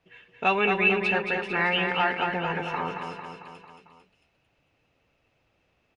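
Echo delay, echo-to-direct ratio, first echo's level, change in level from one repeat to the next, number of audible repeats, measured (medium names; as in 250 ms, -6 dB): 224 ms, -3.5 dB, -5.5 dB, -4.5 dB, 5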